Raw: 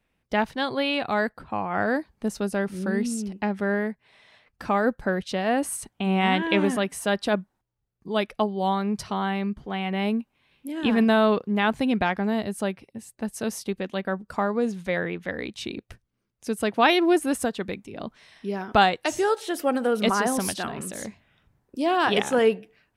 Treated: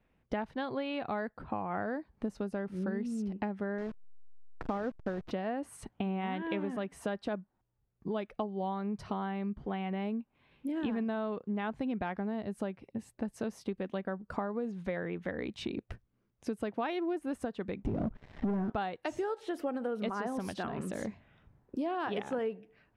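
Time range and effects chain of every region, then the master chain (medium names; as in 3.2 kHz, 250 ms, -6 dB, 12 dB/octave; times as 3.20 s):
3.78–5.31 s: one-bit delta coder 32 kbps, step -31.5 dBFS + hysteresis with a dead band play -26.5 dBFS
17.82–18.70 s: tilt EQ -4.5 dB/octave + band-stop 1.1 kHz, Q 14 + waveshaping leveller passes 3
whole clip: low-pass 1.3 kHz 6 dB/octave; compression 6:1, threshold -35 dBFS; trim +2.5 dB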